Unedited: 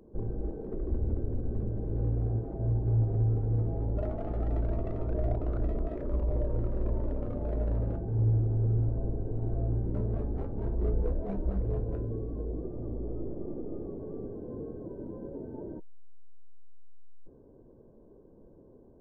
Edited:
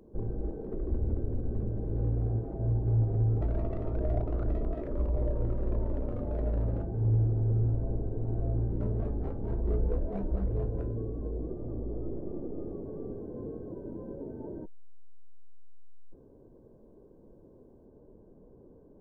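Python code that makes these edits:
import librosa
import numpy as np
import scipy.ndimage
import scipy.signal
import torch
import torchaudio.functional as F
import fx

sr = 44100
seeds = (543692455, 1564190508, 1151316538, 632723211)

y = fx.edit(x, sr, fx.cut(start_s=3.41, length_s=1.14), tone=tone)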